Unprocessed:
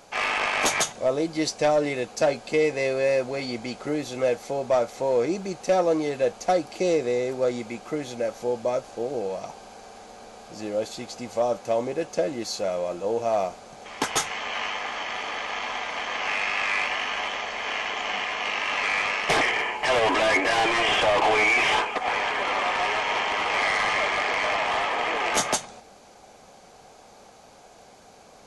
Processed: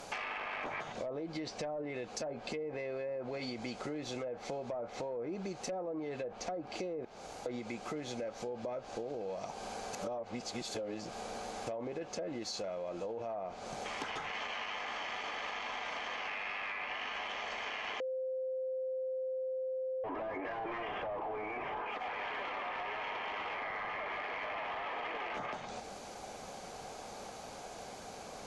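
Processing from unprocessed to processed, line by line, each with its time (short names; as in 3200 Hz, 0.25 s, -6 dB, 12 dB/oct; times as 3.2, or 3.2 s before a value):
7.05–7.46 room tone
9.93–11.67 reverse
18–20.04 bleep 520 Hz -9 dBFS
whole clip: treble ducked by the level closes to 1000 Hz, closed at -17.5 dBFS; limiter -24.5 dBFS; compressor, threshold -41 dBFS; gain +3.5 dB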